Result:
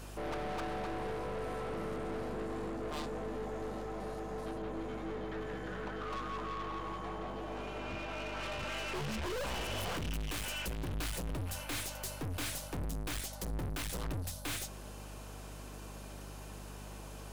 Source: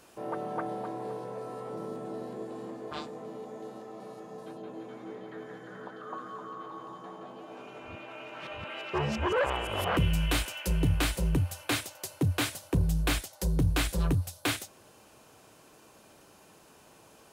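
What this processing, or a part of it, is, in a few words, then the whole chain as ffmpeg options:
valve amplifier with mains hum: -af "aeval=exprs='(tanh(158*val(0)+0.4)-tanh(0.4))/158':c=same,aeval=exprs='val(0)+0.002*(sin(2*PI*50*n/s)+sin(2*PI*2*50*n/s)/2+sin(2*PI*3*50*n/s)/3+sin(2*PI*4*50*n/s)/4+sin(2*PI*5*50*n/s)/5)':c=same,volume=7dB"

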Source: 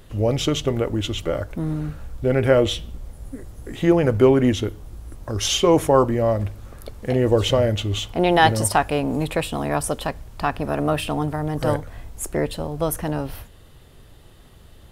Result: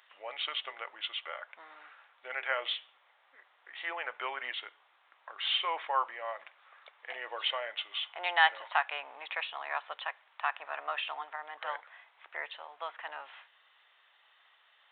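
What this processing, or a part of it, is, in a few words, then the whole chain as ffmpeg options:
musical greeting card: -af "aresample=8000,aresample=44100,highpass=f=890:w=0.5412,highpass=f=890:w=1.3066,equalizer=f=2k:t=o:w=0.53:g=4.5,volume=-6.5dB"

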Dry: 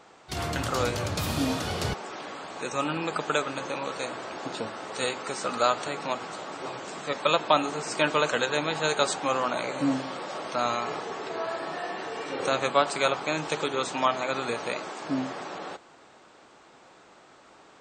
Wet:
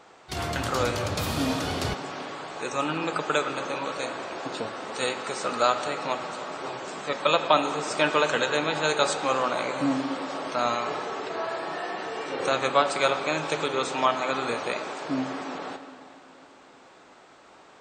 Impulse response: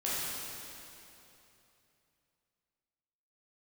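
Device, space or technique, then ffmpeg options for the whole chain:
filtered reverb send: -filter_complex "[0:a]asplit=2[a][b];[b]highpass=f=160:w=0.5412,highpass=f=160:w=1.3066,lowpass=5.3k[c];[1:a]atrim=start_sample=2205[d];[c][d]afir=irnorm=-1:irlink=0,volume=-14dB[e];[a][e]amix=inputs=2:normalize=0"

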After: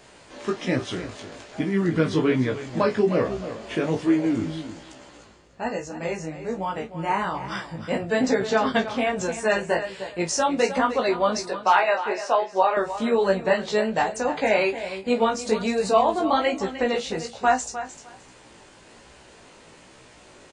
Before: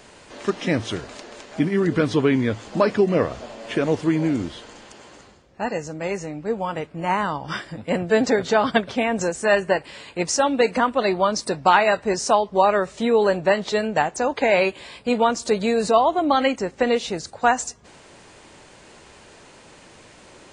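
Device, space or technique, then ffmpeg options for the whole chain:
double-tracked vocal: -filter_complex "[0:a]asettb=1/sr,asplit=3[a][b][c];[a]atrim=end=11.464[d];[b]atrim=start=11.46:end=12.77,asetpts=PTS-STARTPTS,afade=t=in:d=0.004:c=qsin,afade=t=out:st=1.306:d=0.004:c=qsin,acrossover=split=340 4300:gain=0.0891 1 0.158[e][f][g];[e][f][g]amix=inputs=3:normalize=0[h];[c]atrim=start=12.766[i];[d][h]acrossfade=d=0.004:c1=hsin:c2=qsin[j];[j][i]acrossfade=d=0.004:c1=qsin:c2=hsin,asplit=2[k][l];[l]adelay=31,volume=-10.5dB[m];[k][m]amix=inputs=2:normalize=0,aecho=1:1:305|610:0.251|0.0452,flanger=delay=15.5:depth=3.6:speed=1.2"

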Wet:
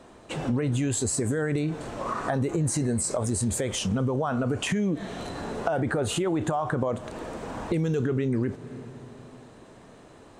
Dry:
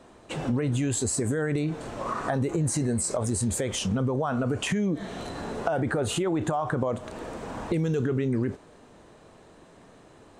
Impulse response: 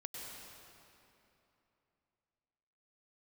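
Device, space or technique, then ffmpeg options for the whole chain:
ducked reverb: -filter_complex "[0:a]asplit=3[a][b][c];[1:a]atrim=start_sample=2205[d];[b][d]afir=irnorm=-1:irlink=0[e];[c]apad=whole_len=458360[f];[e][f]sidechaincompress=threshold=-53dB:ratio=3:attack=16:release=105,volume=-4.5dB[g];[a][g]amix=inputs=2:normalize=0"

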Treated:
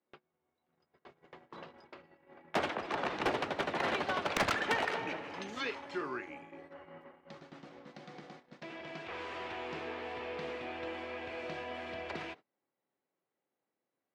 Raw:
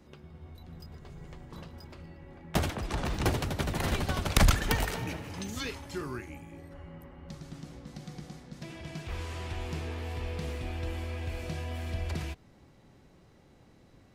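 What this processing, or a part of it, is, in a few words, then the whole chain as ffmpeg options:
walkie-talkie: -af "highpass=400,lowpass=2.8k,asoftclip=type=hard:threshold=-27.5dB,agate=range=-27dB:threshold=-54dB:ratio=16:detection=peak,volume=3dB"

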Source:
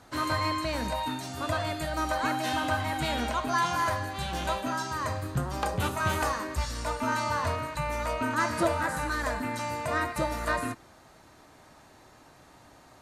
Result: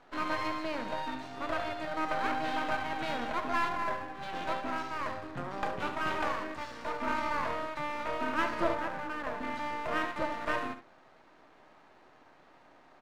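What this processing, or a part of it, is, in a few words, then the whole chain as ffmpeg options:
crystal radio: -filter_complex "[0:a]asplit=3[a][b][c];[a]afade=t=out:st=3.68:d=0.02[d];[b]lowpass=f=1.2k:p=1,afade=t=in:st=3.68:d=0.02,afade=t=out:st=4.21:d=0.02[e];[c]afade=t=in:st=4.21:d=0.02[f];[d][e][f]amix=inputs=3:normalize=0,asettb=1/sr,asplit=3[g][h][i];[g]atrim=end=8.744[j];[h]atrim=start=8.74:end=9.4,asetpts=PTS-STARTPTS,afade=t=in:d=0.004:c=qsin,afade=t=out:st=0.656:d=0.004:c=qsin,lowpass=f=1.1k:p=1[k];[i]atrim=start=9.396[l];[j][k]acrossfade=d=0.004:c1=hsin:c2=qsin[m];[m][l]acrossfade=d=0.004:c1=qsin:c2=hsin,highpass=260,lowpass=2.7k,aecho=1:1:70:0.316,aeval=exprs='if(lt(val(0),0),0.251*val(0),val(0))':c=same"

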